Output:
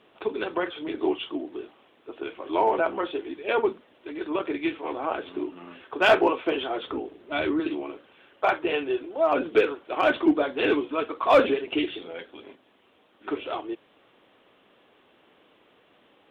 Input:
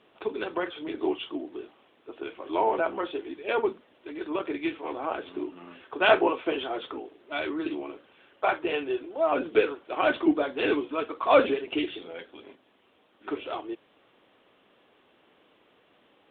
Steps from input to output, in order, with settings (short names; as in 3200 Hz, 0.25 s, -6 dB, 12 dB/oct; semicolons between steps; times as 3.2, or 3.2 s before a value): 6.87–7.6 low shelf 270 Hz +10.5 dB; in parallel at -9.5 dB: wavefolder -15.5 dBFS